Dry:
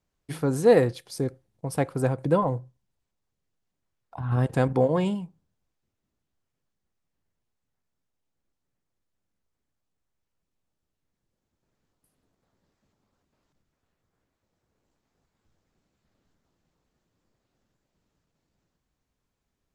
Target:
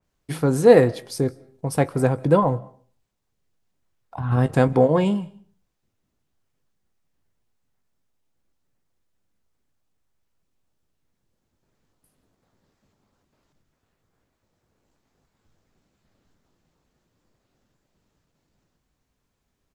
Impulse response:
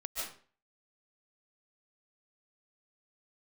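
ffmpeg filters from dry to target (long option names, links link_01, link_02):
-filter_complex "[0:a]asplit=2[link_01][link_02];[link_02]adelay=20,volume=-14dB[link_03];[link_01][link_03]amix=inputs=2:normalize=0,asplit=2[link_04][link_05];[1:a]atrim=start_sample=2205,adelay=8[link_06];[link_05][link_06]afir=irnorm=-1:irlink=0,volume=-24dB[link_07];[link_04][link_07]amix=inputs=2:normalize=0,adynamicequalizer=threshold=0.00891:dfrequency=3000:dqfactor=0.7:tfrequency=3000:tqfactor=0.7:attack=5:release=100:ratio=0.375:range=2:mode=cutabove:tftype=highshelf,volume=5dB"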